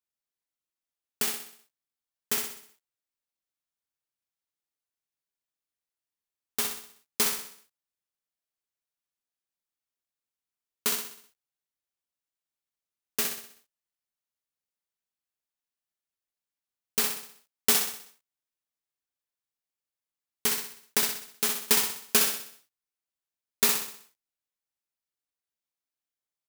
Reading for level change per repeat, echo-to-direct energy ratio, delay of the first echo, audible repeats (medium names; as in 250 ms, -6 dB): -6.5 dB, -4.5 dB, 63 ms, 5